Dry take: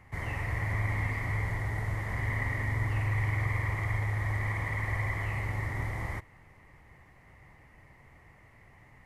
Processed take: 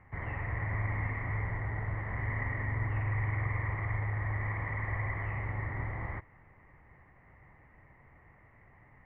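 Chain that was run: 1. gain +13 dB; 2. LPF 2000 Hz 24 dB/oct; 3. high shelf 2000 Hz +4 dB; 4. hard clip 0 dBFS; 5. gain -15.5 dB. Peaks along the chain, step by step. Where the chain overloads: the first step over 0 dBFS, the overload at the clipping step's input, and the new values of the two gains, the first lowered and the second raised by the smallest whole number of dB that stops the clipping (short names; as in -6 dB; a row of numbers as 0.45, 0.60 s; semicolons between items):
-5.0, -6.0, -5.5, -5.5, -21.0 dBFS; no overload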